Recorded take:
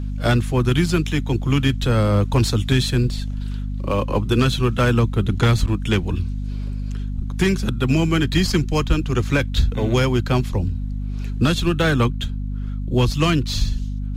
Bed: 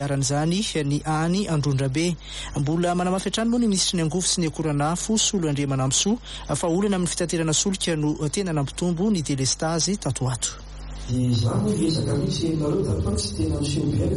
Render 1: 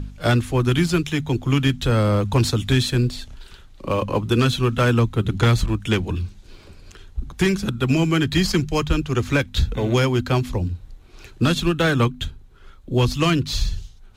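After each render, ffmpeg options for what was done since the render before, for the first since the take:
-af "bandreject=f=50:t=h:w=4,bandreject=f=100:t=h:w=4,bandreject=f=150:t=h:w=4,bandreject=f=200:t=h:w=4,bandreject=f=250:t=h:w=4"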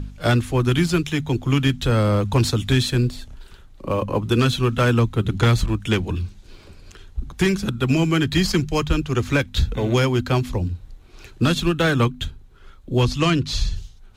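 -filter_complex "[0:a]asettb=1/sr,asplit=3[a][b][c];[a]atrim=end=3.104[d];[b]atrim=start=3.1:end=4.22,asetpts=PTS-STARTPTS,afade=t=in:d=0.004:c=qsin,afade=t=out:st=1.116:d=0.004:c=qsin,equalizer=f=3.9k:t=o:w=2.4:g=-5.5[e];[c]atrim=start=4.216[f];[d][e]acrossfade=d=0.004:c1=hsin:c2=qsin[g];[g][f]acrossfade=d=0.004:c1=qsin:c2=hsin,asettb=1/sr,asplit=3[h][i][j];[h]atrim=end=13.034[k];[i]atrim=start=13.03:end=13.76,asetpts=PTS-STARTPTS,afade=t=in:d=0.004:c=qsin,afade=t=out:st=0.726:d=0.004:c=qsin,lowpass=9.4k[l];[j]atrim=start=13.756[m];[k][l]acrossfade=d=0.004:c1=hsin:c2=qsin[n];[n][m]acrossfade=d=0.004:c1=qsin:c2=hsin"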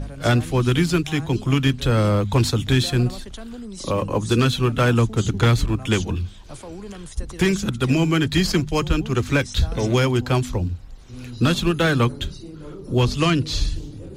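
-filter_complex "[1:a]volume=-14.5dB[a];[0:a][a]amix=inputs=2:normalize=0"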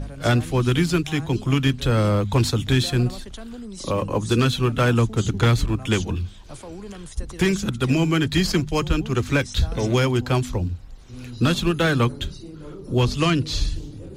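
-af "volume=-1dB"

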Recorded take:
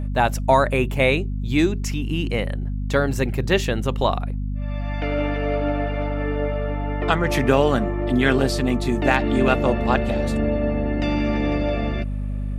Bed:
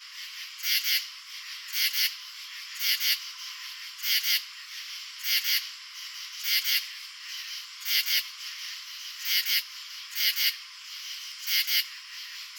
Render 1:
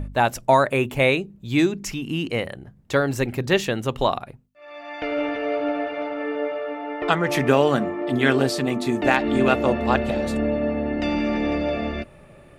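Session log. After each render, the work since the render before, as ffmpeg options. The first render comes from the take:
-af "bandreject=f=50:t=h:w=4,bandreject=f=100:t=h:w=4,bandreject=f=150:t=h:w=4,bandreject=f=200:t=h:w=4,bandreject=f=250:t=h:w=4"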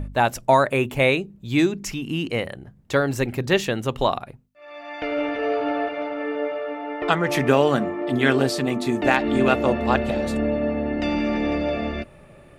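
-filter_complex "[0:a]asettb=1/sr,asplit=3[a][b][c];[a]atrim=end=5.374[d];[b]atrim=start=5.37:end=5.89,asetpts=PTS-STARTPTS,afade=t=in:d=0.004:c=qsin,afade=t=out:st=0.516:d=0.004:c=qsin,asplit=2[e][f];[f]adelay=16,volume=-3dB[g];[e][g]amix=inputs=2:normalize=0,atrim=end_sample=22932[h];[c]atrim=start=5.886[i];[d][h]acrossfade=d=0.004:c1=hsin:c2=qsin[j];[j][i]acrossfade=d=0.004:c1=qsin:c2=hsin"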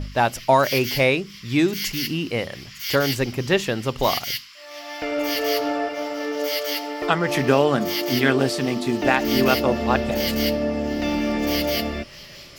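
-filter_complex "[1:a]volume=-2.5dB[a];[0:a][a]amix=inputs=2:normalize=0"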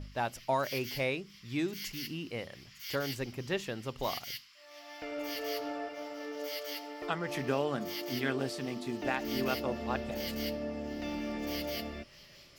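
-af "volume=-14dB"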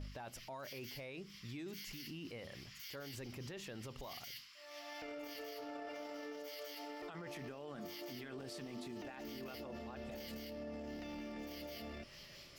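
-af "acompressor=threshold=-37dB:ratio=6,alimiter=level_in=15.5dB:limit=-24dB:level=0:latency=1:release=11,volume=-15.5dB"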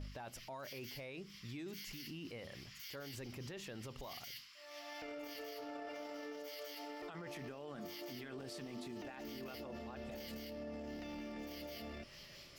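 -af anull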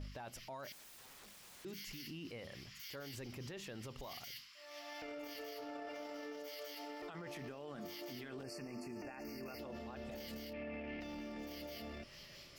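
-filter_complex "[0:a]asettb=1/sr,asplit=3[a][b][c];[a]atrim=end=0.724[d];[b]atrim=start=0.72:end=1.65,asetpts=PTS-STARTPTS,afade=t=in:d=0.004:c=qsin,afade=t=out:st=0.926:d=0.004:c=qsin,aeval=exprs='(mod(447*val(0)+1,2)-1)/447':c=same[e];[c]atrim=start=1.646[f];[d][e]acrossfade=d=0.004:c1=hsin:c2=qsin[g];[g][f]acrossfade=d=0.004:c1=qsin:c2=hsin,asettb=1/sr,asplit=3[h][i][j];[h]atrim=end=8.434[k];[i]atrim=start=8.43:end=9.59,asetpts=PTS-STARTPTS,afade=t=in:d=0.004:c=qsin,afade=t=out:st=1.156:d=0.004:c=qsin,asuperstop=centerf=3500:order=20:qfactor=2.3[l];[j]atrim=start=9.586[m];[k][l]acrossfade=d=0.004:c1=hsin:c2=qsin[n];[n][m]acrossfade=d=0.004:c1=qsin:c2=hsin,asettb=1/sr,asplit=3[o][p][q];[o]atrim=end=10.534[r];[p]atrim=start=10.53:end=11.01,asetpts=PTS-STARTPTS,afade=t=in:d=0.004:c=qsin,afade=t=out:st=0.476:d=0.004:c=qsin,lowpass=f=2.4k:t=q:w=5.7[s];[q]atrim=start=11.006[t];[r][s]acrossfade=d=0.004:c1=hsin:c2=qsin[u];[u][t]acrossfade=d=0.004:c1=qsin:c2=hsin"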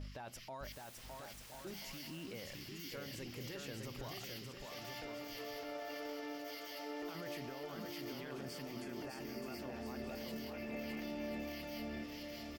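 -af "aecho=1:1:610|1037|1336|1545|1692:0.631|0.398|0.251|0.158|0.1"

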